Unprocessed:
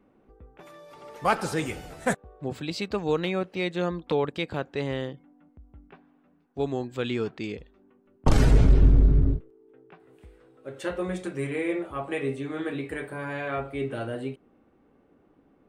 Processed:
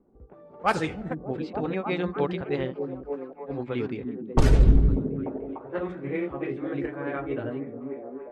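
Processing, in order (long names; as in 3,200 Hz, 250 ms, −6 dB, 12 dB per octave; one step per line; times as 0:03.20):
time stretch by overlap-add 0.53×, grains 154 ms
echo through a band-pass that steps 296 ms, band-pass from 210 Hz, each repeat 0.7 octaves, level −1 dB
low-pass that shuts in the quiet parts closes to 720 Hz, open at −18 dBFS
level +1 dB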